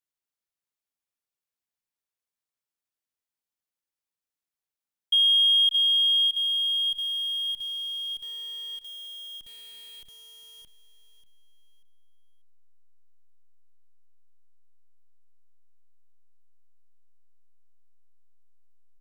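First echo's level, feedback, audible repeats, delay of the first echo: −13.0 dB, 32%, 3, 589 ms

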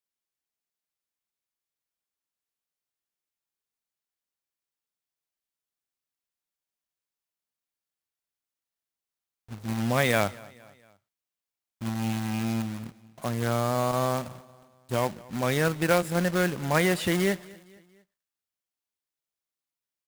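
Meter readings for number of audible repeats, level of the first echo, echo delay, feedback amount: 2, −23.0 dB, 231 ms, 49%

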